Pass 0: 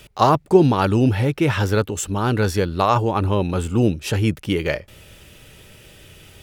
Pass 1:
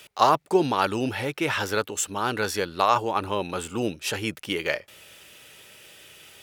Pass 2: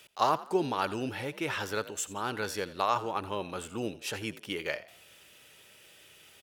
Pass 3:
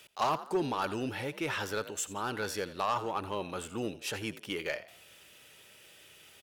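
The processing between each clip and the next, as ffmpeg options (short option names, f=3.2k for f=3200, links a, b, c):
-af "highpass=f=800:p=1"
-filter_complex "[0:a]asplit=4[a][b][c][d];[b]adelay=85,afreqshift=51,volume=-17dB[e];[c]adelay=170,afreqshift=102,volume=-26.1dB[f];[d]adelay=255,afreqshift=153,volume=-35.2dB[g];[a][e][f][g]amix=inputs=4:normalize=0,volume=-7.5dB"
-af "asoftclip=type=tanh:threshold=-22dB"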